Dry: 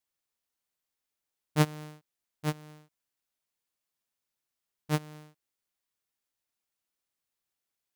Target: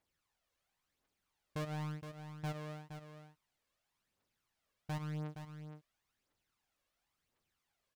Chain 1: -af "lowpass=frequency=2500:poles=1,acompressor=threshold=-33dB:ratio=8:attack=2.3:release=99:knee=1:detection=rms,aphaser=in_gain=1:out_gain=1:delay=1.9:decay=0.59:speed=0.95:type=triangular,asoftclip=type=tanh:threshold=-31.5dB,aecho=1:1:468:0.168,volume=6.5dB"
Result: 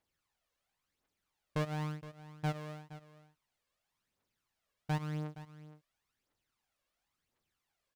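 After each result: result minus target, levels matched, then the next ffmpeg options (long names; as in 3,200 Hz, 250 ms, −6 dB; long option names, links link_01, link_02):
soft clipping: distortion −10 dB; echo-to-direct −6.5 dB
-af "lowpass=frequency=2500:poles=1,acompressor=threshold=-33dB:ratio=8:attack=2.3:release=99:knee=1:detection=rms,aphaser=in_gain=1:out_gain=1:delay=1.9:decay=0.59:speed=0.95:type=triangular,asoftclip=type=tanh:threshold=-42dB,aecho=1:1:468:0.168,volume=6.5dB"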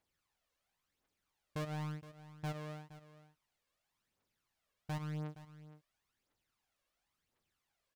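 echo-to-direct −6.5 dB
-af "lowpass=frequency=2500:poles=1,acompressor=threshold=-33dB:ratio=8:attack=2.3:release=99:knee=1:detection=rms,aphaser=in_gain=1:out_gain=1:delay=1.9:decay=0.59:speed=0.95:type=triangular,asoftclip=type=tanh:threshold=-42dB,aecho=1:1:468:0.355,volume=6.5dB"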